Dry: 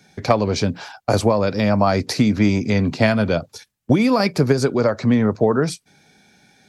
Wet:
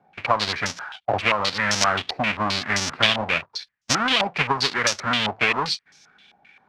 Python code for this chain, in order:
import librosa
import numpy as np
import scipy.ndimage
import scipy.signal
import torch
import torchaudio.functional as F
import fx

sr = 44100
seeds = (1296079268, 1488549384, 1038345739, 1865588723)

y = fx.halfwave_hold(x, sr)
y = fx.tilt_shelf(y, sr, db=-8.5, hz=970.0)
y = fx.filter_held_lowpass(y, sr, hz=7.6, low_hz=770.0, high_hz=5800.0)
y = y * 10.0 ** (-10.5 / 20.0)